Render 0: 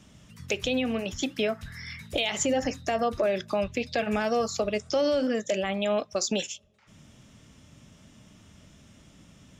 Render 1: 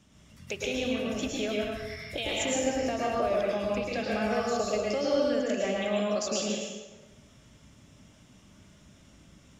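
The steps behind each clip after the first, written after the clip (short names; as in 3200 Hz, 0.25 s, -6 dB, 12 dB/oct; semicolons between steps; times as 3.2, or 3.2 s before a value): plate-style reverb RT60 1.2 s, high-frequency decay 0.75×, pre-delay 95 ms, DRR -4.5 dB; gain -7 dB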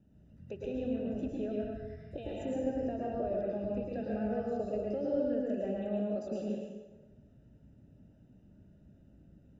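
running mean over 40 samples; gain -2 dB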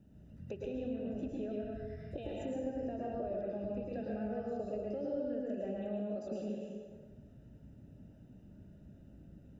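compressor 2:1, threshold -45 dBFS, peak gain reduction 10 dB; gain +3.5 dB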